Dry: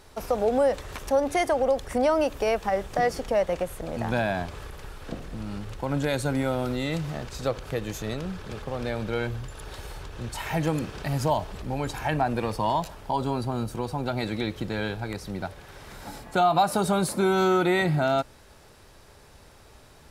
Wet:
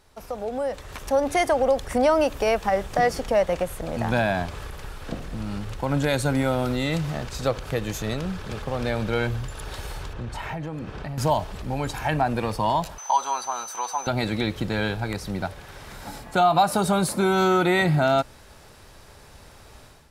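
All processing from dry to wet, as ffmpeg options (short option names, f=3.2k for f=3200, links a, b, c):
-filter_complex "[0:a]asettb=1/sr,asplit=3[a][b][c];[a]atrim=end=10.134[d];[b]atrim=start=10.13:end=11.18,asetpts=PTS-STARTPTS,afade=t=in:d=0.004:c=qsin,afade=t=out:st=1.046:d=0.004:c=qsin,lowpass=f=1.8k:p=1,acompressor=threshold=-32dB:ratio=5:attack=3.2:release=140:knee=1:detection=peak[e];[c]atrim=start=11.176[f];[d][e]acrossfade=d=0.004:c1=hsin:c2=qsin[g];[g][f]acrossfade=d=0.004:c1=qsin:c2=hsin,asettb=1/sr,asplit=3[h][i][j];[h]atrim=end=12.984[k];[i]atrim=start=12.98:end=14.07,asetpts=PTS-STARTPTS,afade=t=in:d=0.004:c=qsin,afade=t=out:st=1.086:d=0.004:c=qsin,highpass=f=970:t=q:w=1.8,aeval=exprs='val(0)+0.01*sin(2*PI*6100*n/s)':c=same[l];[j]atrim=start=14.066[m];[k][l]acrossfade=d=0.004:c1=hsin:c2=qsin[n];[n][m]acrossfade=d=0.004:c1=qsin:c2=hsin,equalizer=f=380:w=1.5:g=-2.5,dynaudnorm=f=640:g=3:m=12dB,volume=-6.5dB"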